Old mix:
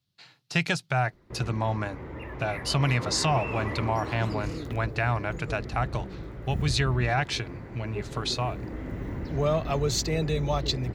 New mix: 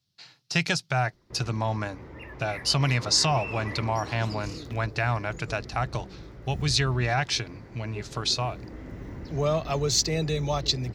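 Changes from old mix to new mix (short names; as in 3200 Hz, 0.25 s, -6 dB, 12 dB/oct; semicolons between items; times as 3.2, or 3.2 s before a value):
first sound -5.0 dB; master: add bell 5400 Hz +8 dB 0.75 oct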